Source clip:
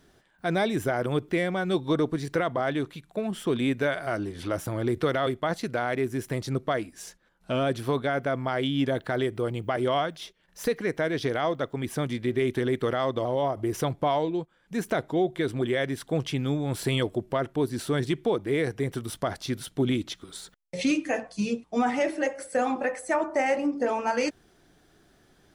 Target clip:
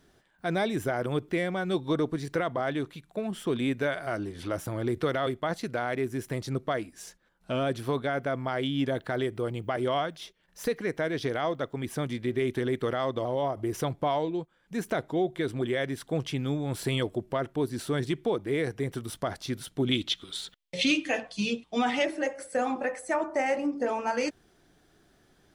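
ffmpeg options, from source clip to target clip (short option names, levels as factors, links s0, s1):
-filter_complex "[0:a]asettb=1/sr,asplit=3[s0][s1][s2];[s0]atrim=end=19.914[s3];[s1]atrim=start=19.91:end=22.05,asetpts=PTS-STARTPTS,afade=t=in:d=0.004:c=qsin,afade=t=out:st=2.136:d=0.004:c=qsin,equalizer=f=3300:t=o:w=0.97:g=13[s4];[s2]atrim=start=22.046[s5];[s3][s4]acrossfade=d=0.004:c1=hsin:c2=qsin[s6];[s6][s5]acrossfade=d=0.004:c1=qsin:c2=hsin,volume=0.75"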